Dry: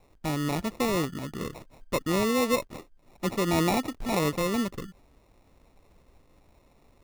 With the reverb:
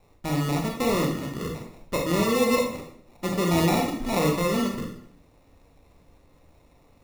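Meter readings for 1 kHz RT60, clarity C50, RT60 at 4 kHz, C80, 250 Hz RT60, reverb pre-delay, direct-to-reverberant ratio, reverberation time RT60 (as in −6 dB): 0.60 s, 4.5 dB, 0.55 s, 8.5 dB, 0.70 s, 27 ms, 1.0 dB, 0.65 s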